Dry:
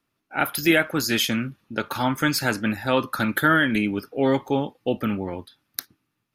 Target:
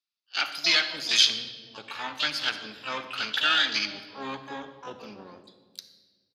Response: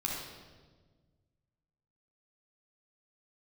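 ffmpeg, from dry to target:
-filter_complex "[0:a]afwtdn=0.0501,acontrast=47,asplit=3[a][b][c];[b]asetrate=22050,aresample=44100,atempo=2,volume=-12dB[d];[c]asetrate=88200,aresample=44100,atempo=0.5,volume=-9dB[e];[a][d][e]amix=inputs=3:normalize=0,bandpass=f=4.4k:t=q:w=2.9:csg=0,asplit=2[f][g];[1:a]atrim=start_sample=2205,lowshelf=f=180:g=6[h];[g][h]afir=irnorm=-1:irlink=0,volume=-9.5dB[i];[f][i]amix=inputs=2:normalize=0,volume=4.5dB"

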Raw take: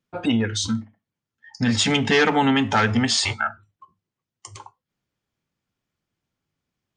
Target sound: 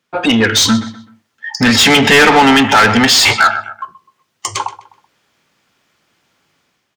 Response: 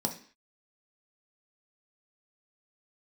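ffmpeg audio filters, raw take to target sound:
-filter_complex "[0:a]dynaudnorm=f=110:g=7:m=9.5dB,asplit=2[a][b];[b]adelay=127,lowpass=f=4.1k:p=1,volume=-17dB,asplit=2[c][d];[d]adelay=127,lowpass=f=4.1k:p=1,volume=0.35,asplit=2[e][f];[f]adelay=127,lowpass=f=4.1k:p=1,volume=0.35[g];[a][c][e][g]amix=inputs=4:normalize=0,asplit=2[h][i];[i]highpass=f=720:p=1,volume=22dB,asoftclip=type=tanh:threshold=-1dB[j];[h][j]amix=inputs=2:normalize=0,lowpass=f=5.9k:p=1,volume=-6dB"

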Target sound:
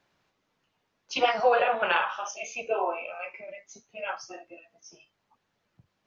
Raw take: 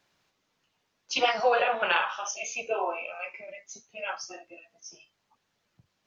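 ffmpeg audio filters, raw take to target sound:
-af "highshelf=f=3.3k:g=-9.5,volume=2dB"

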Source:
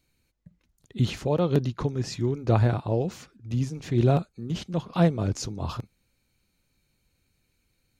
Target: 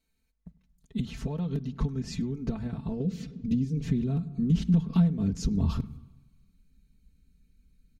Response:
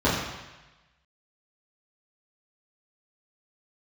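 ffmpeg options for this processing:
-filter_complex "[0:a]agate=range=-9dB:threshold=-50dB:ratio=16:detection=peak,asettb=1/sr,asplit=3[a][b][c];[a]atrim=end=3.004[d];[b]atrim=start=3:end=3.82,asetpts=PTS-STARTPTS,afade=t=in:d=0.004:c=qsin,afade=t=out:st=0.816:d=0.004:c=qsin,equalizer=f=125:t=o:w=1:g=4,equalizer=f=250:t=o:w=1:g=5,equalizer=f=500:t=o:w=1:g=11,equalizer=f=1k:t=o:w=1:g=-10,equalizer=f=2k:t=o:w=1:g=3,equalizer=f=4k:t=o:w=1:g=6[e];[c]atrim=start=3.816[f];[d][e]acrossfade=d=0.004:c1=hsin:c2=qsin[g];[g][f]acrossfade=d=0.004:c1=qsin:c2=hsin,asplit=2[h][i];[1:a]atrim=start_sample=2205[j];[i][j]afir=irnorm=-1:irlink=0,volume=-39dB[k];[h][k]amix=inputs=2:normalize=0,acompressor=threshold=-34dB:ratio=16,asplit=2[l][m];[m]adelay=100,highpass=300,lowpass=3.4k,asoftclip=type=hard:threshold=-33dB,volume=-21dB[n];[l][n]amix=inputs=2:normalize=0,asubboost=boost=11:cutoff=200,aecho=1:1:4.5:0.98,volume=-1dB"

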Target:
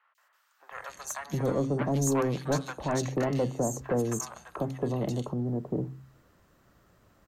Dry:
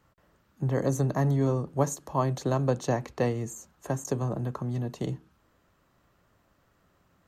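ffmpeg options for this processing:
-filter_complex "[0:a]bandreject=f=132.7:t=h:w=4,bandreject=f=265.4:t=h:w=4,acrossover=split=160|1600[a][b][c];[a]acompressor=threshold=-43dB:ratio=6[d];[d][b][c]amix=inputs=3:normalize=0,asoftclip=type=tanh:threshold=-26dB,acrossover=split=930|2800[e][f][g];[g]adelay=150[h];[e]adelay=710[i];[i][f][h]amix=inputs=3:normalize=0,volume=5dB"

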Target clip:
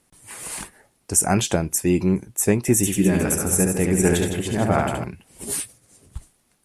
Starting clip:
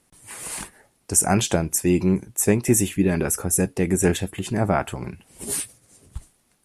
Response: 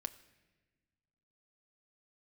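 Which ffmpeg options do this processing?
-filter_complex "[0:a]asettb=1/sr,asplit=3[a][b][c];[a]atrim=end=2.764[d];[b]atrim=start=2.76:end=5.04,asetpts=PTS-STARTPTS,afade=t=in:d=0.004:c=qsin,afade=t=out:st=2.276:d=0.004:c=qsin,aecho=1:1:70|161|279.3|433.1|633:0.631|0.398|0.251|0.158|0.1,atrim=end_sample=100548[e];[c]atrim=start=5.036[f];[d][e]acrossfade=d=0.004:c1=hsin:c2=qsin[g];[g][f]acrossfade=d=0.004:c1=qsin:c2=hsin"

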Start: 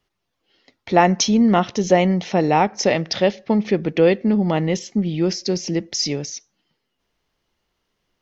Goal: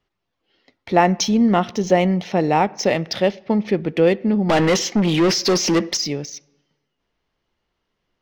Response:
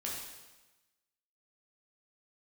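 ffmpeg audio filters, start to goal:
-filter_complex "[0:a]asettb=1/sr,asplit=3[a][b][c];[a]atrim=end=4.494[d];[b]atrim=start=4.49:end=5.97,asetpts=PTS-STARTPTS,afade=t=in:d=0.004:c=qsin,afade=t=out:st=1.476:d=0.004:c=qsin,asplit=2[e][f];[f]highpass=f=720:p=1,volume=26dB,asoftclip=type=tanh:threshold=-8dB[g];[e][g]amix=inputs=2:normalize=0,lowpass=f=4.9k:p=1,volume=-6dB[h];[c]atrim=start=5.966[i];[d][h]acrossfade=d=0.004:c1=hsin:c2=qsin[j];[j][i]acrossfade=d=0.004:c1=qsin:c2=hsin,adynamicsmooth=sensitivity=5:basefreq=6k,asplit=2[k][l];[1:a]atrim=start_sample=2205,lowpass=3.4k[m];[l][m]afir=irnorm=-1:irlink=0,volume=-23dB[n];[k][n]amix=inputs=2:normalize=0,volume=-1dB"

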